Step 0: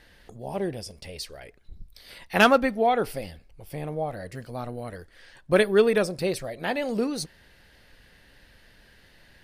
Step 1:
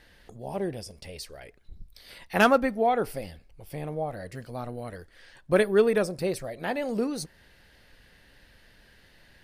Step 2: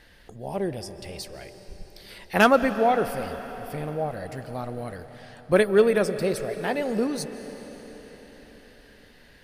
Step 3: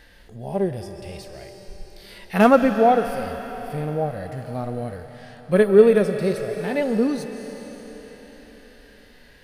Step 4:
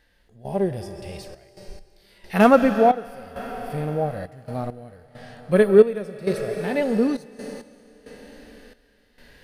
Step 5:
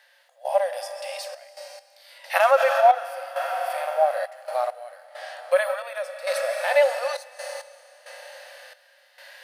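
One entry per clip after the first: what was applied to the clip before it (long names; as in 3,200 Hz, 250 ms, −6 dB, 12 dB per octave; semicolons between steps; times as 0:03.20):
dynamic equaliser 3,400 Hz, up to −5 dB, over −45 dBFS, Q 1; level −1.5 dB
comb and all-pass reverb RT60 5 s, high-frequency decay 0.95×, pre-delay 110 ms, DRR 11 dB; level +2.5 dB
harmonic and percussive parts rebalanced percussive −15 dB; level +6.5 dB
gate pattern "..xxxx.x..xxx" 67 BPM −12 dB
brickwall limiter −13 dBFS, peak gain reduction 11.5 dB; linear-phase brick-wall high-pass 510 Hz; level +7.5 dB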